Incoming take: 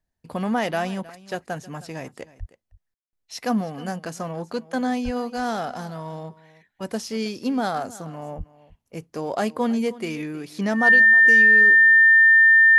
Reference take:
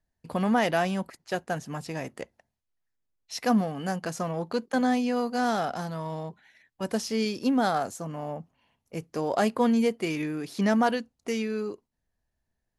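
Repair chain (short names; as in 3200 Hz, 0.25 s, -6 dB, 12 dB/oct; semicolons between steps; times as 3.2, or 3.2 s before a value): notch 1800 Hz, Q 30; 2.39–2.51 HPF 140 Hz 24 dB/oct; 5.04–5.16 HPF 140 Hz 24 dB/oct; 8.37–8.49 HPF 140 Hz 24 dB/oct; room tone fill 2.94–3.13; inverse comb 0.315 s -19 dB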